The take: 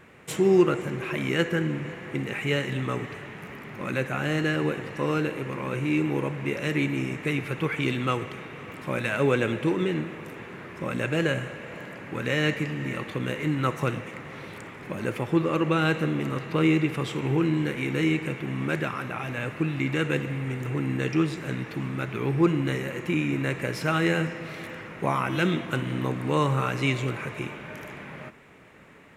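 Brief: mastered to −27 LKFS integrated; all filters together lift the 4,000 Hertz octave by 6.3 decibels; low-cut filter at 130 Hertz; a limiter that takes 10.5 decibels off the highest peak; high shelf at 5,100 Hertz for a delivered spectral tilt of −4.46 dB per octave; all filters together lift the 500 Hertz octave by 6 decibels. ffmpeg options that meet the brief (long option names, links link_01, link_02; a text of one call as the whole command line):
ffmpeg -i in.wav -af "highpass=130,equalizer=frequency=500:width_type=o:gain=7.5,equalizer=frequency=4000:width_type=o:gain=6.5,highshelf=frequency=5100:gain=7,alimiter=limit=-15dB:level=0:latency=1" out.wav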